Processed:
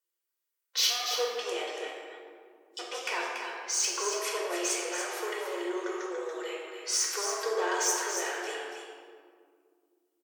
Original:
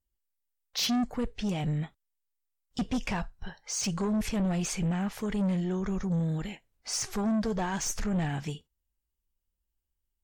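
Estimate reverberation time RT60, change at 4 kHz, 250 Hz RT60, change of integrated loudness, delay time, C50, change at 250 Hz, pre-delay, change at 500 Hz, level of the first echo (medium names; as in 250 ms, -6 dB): 2.1 s, +5.5 dB, 3.5 s, 0.0 dB, 284 ms, -0.5 dB, -13.0 dB, 3 ms, +4.5 dB, -7.0 dB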